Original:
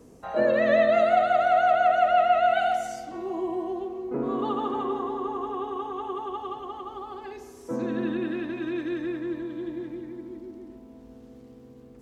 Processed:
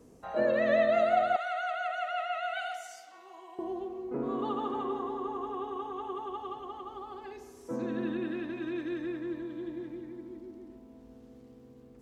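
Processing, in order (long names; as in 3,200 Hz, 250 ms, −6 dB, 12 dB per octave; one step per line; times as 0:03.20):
0:01.36–0:03.59: high-pass filter 1,200 Hz 12 dB per octave
level −5 dB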